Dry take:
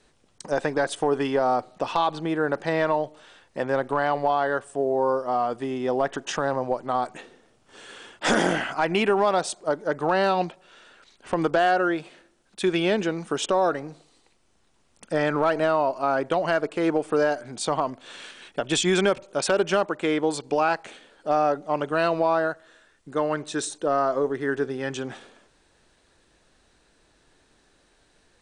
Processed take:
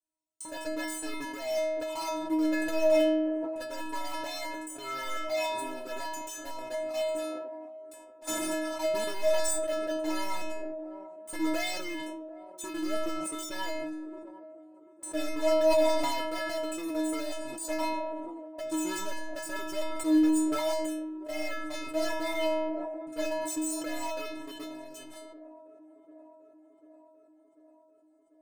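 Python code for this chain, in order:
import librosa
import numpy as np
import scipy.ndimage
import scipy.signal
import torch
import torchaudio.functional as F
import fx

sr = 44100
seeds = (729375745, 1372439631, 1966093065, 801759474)

p1 = fx.rattle_buzz(x, sr, strikes_db=-40.0, level_db=-31.0)
p2 = fx.highpass(p1, sr, hz=85.0, slope=6)
p3 = fx.band_shelf(p2, sr, hz=2800.0, db=-12.0, octaves=2.4)
p4 = np.clip(10.0 ** (21.0 / 20.0) * p3, -1.0, 1.0) / 10.0 ** (21.0 / 20.0)
p5 = p3 + (p4 * librosa.db_to_amplitude(-10.0))
p6 = fx.level_steps(p5, sr, step_db=23)
p7 = fx.leveller(p6, sr, passes=5)
p8 = fx.bass_treble(p7, sr, bass_db=0, treble_db=8)
p9 = fx.stiff_resonator(p8, sr, f0_hz=310.0, decay_s=0.73, stiffness=0.008)
p10 = p9 + fx.echo_wet_bandpass(p9, sr, ms=743, feedback_pct=67, hz=430.0, wet_db=-15.5, dry=0)
p11 = fx.sustainer(p10, sr, db_per_s=24.0)
y = p11 * librosa.db_to_amplitude(1.5)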